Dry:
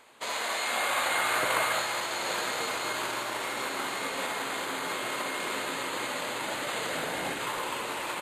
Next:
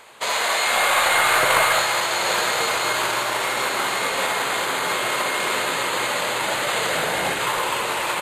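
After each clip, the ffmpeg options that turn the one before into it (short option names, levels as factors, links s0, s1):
-filter_complex "[0:a]asplit=2[s0][s1];[s1]aeval=exprs='clip(val(0),-1,0.0398)':c=same,volume=0.473[s2];[s0][s2]amix=inputs=2:normalize=0,equalizer=f=270:w=2.5:g=-8.5,volume=2.24"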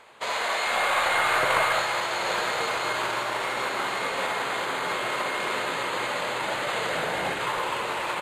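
-af "lowpass=f=3200:p=1,volume=0.631"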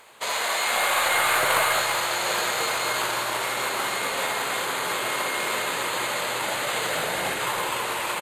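-filter_complex "[0:a]aemphasis=mode=production:type=50fm,asplit=2[s0][s1];[s1]aecho=0:1:326:0.316[s2];[s0][s2]amix=inputs=2:normalize=0"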